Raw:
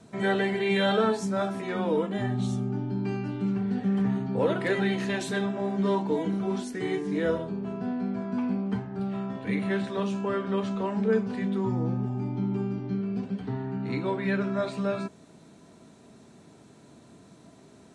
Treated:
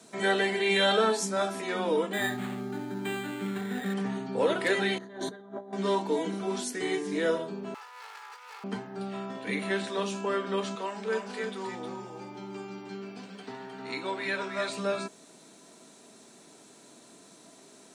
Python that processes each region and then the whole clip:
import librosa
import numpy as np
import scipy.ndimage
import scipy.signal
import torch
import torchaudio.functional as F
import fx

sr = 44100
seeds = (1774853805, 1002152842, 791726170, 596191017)

y = fx.chain(x, sr, fx.peak_eq(hz=1900.0, db=12.0, octaves=0.93),
    fx.resample_linear(factor=8), at=(2.13, 3.94))
y = fx.chain(y, sr, fx.moving_average(points=17),
    fx.over_compress(threshold_db=-36.0, ratio=-0.5), at=(4.98, 5.73))
y = fx.chain(y, sr, fx.lower_of_two(delay_ms=2.3),
    fx.highpass(hz=950.0, slope=24),
    fx.over_compress(threshold_db=-48.0, ratio=-1.0), at=(7.74, 8.64))
y = fx.chain(y, sr, fx.low_shelf(hz=400.0, db=-11.5),
    fx.echo_single(ms=311, db=-5.5), at=(10.75, 14.69))
y = scipy.signal.sosfilt(scipy.signal.butter(2, 280.0, 'highpass', fs=sr, output='sos'), y)
y = fx.high_shelf(y, sr, hz=3800.0, db=12.0)